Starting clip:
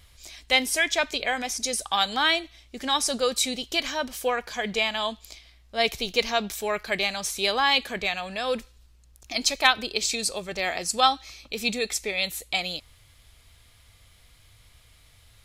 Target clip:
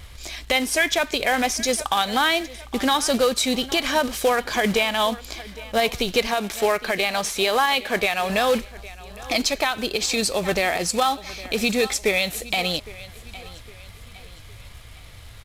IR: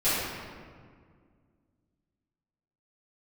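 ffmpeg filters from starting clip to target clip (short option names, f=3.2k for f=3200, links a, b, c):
-filter_complex "[0:a]asettb=1/sr,asplit=3[a][b][c];[a]atrim=end=6.274[d];[b]atrim=start=6.27:end=8.3,asetpts=PTS-STARTPTS,afade=t=in:d=0.004:c=qsin,afade=t=out:st=2.026:d=0.004:c=qsin,bass=f=250:g=-7,treble=f=4k:g=-3[e];[c]atrim=start=8.296[f];[d][e]acrossfade=d=0.004:c1=hsin:c2=qsin[g];[g][f]acrossfade=d=0.004:c1=qsin:c2=hsin,acompressor=threshold=-31dB:ratio=2,highshelf=f=3.7k:g=-9,aecho=1:1:810|1620|2430:0.1|0.042|0.0176,acrusher=bits=3:mode=log:mix=0:aa=0.000001,aresample=32000,aresample=44100,alimiter=level_in=22dB:limit=-1dB:release=50:level=0:latency=1,volume=-8.5dB"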